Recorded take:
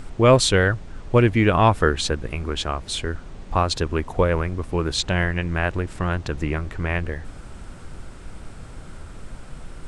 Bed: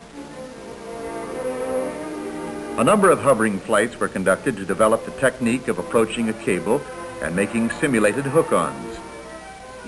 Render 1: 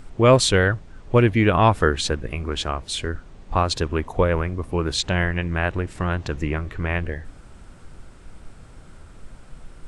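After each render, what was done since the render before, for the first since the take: noise print and reduce 6 dB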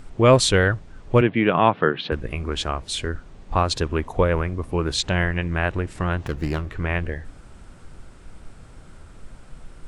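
1.21–2.12 elliptic band-pass 140–3300 Hz; 6.26–6.7 running maximum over 9 samples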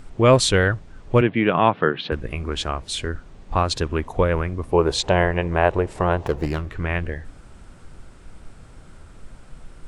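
4.72–6.46 band shelf 630 Hz +9.5 dB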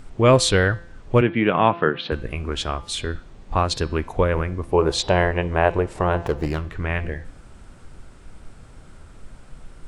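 de-hum 170.6 Hz, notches 33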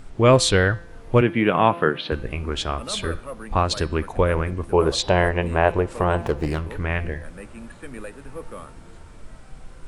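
add bed -19.5 dB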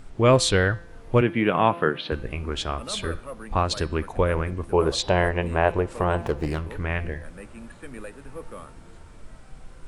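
gain -2.5 dB

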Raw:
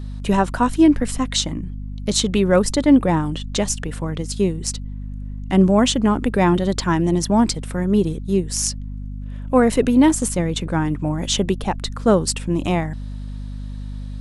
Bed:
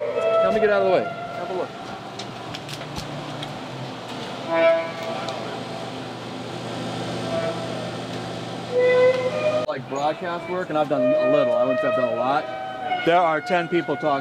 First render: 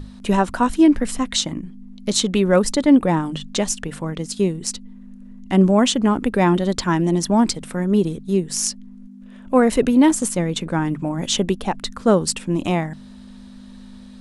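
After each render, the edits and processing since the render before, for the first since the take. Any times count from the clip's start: notches 50/100/150 Hz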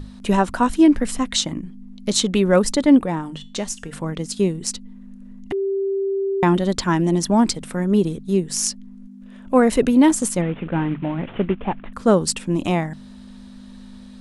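3.03–3.93 resonator 230 Hz, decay 0.34 s, mix 50%; 5.52–6.43 bleep 391 Hz -19 dBFS; 10.41–11.93 CVSD 16 kbps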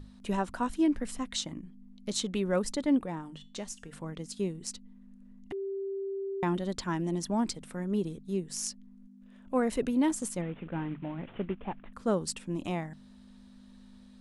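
gain -13 dB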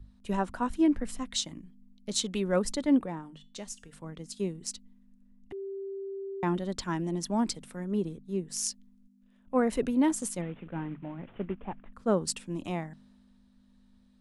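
three-band expander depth 40%

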